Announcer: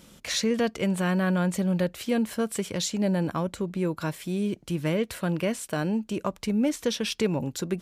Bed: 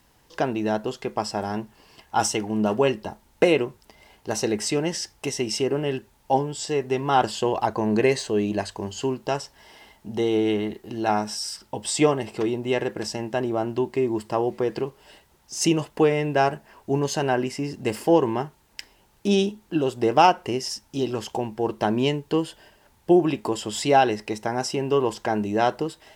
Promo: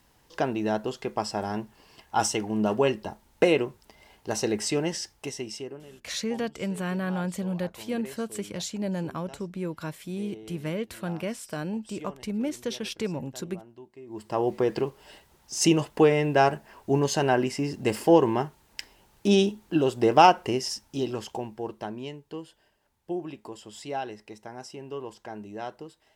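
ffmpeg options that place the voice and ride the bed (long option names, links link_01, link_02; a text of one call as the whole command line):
ffmpeg -i stem1.wav -i stem2.wav -filter_complex "[0:a]adelay=5800,volume=-5dB[link_01];[1:a]volume=20.5dB,afade=type=out:start_time=4.85:duration=1:silence=0.0944061,afade=type=in:start_time=14.06:duration=0.46:silence=0.0707946,afade=type=out:start_time=20.42:duration=1.57:silence=0.177828[link_02];[link_01][link_02]amix=inputs=2:normalize=0" out.wav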